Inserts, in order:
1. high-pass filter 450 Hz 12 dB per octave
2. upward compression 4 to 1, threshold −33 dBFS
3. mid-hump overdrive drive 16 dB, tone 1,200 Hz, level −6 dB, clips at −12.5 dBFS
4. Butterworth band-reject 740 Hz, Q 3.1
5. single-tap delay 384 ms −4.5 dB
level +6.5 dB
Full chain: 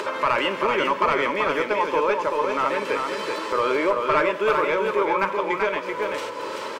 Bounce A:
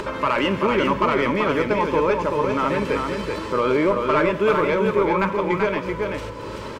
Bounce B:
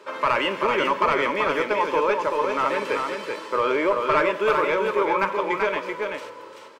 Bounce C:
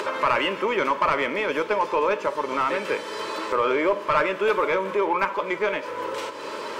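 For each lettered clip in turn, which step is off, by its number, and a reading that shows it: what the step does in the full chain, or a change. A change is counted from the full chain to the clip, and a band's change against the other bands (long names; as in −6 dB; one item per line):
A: 1, 125 Hz band +13.5 dB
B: 2, change in momentary loudness spread +2 LU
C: 5, change in momentary loudness spread +2 LU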